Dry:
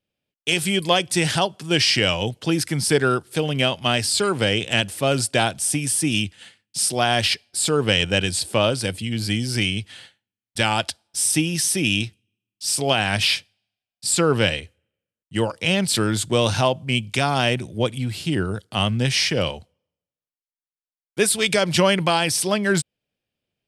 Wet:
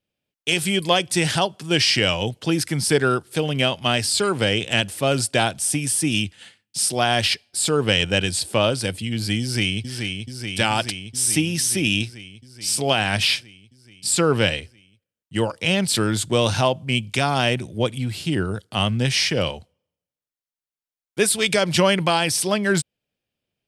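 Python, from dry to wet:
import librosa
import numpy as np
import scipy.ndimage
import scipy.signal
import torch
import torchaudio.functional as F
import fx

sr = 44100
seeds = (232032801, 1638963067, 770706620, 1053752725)

y = fx.echo_throw(x, sr, start_s=9.41, length_s=0.46, ms=430, feedback_pct=75, wet_db=-5.5)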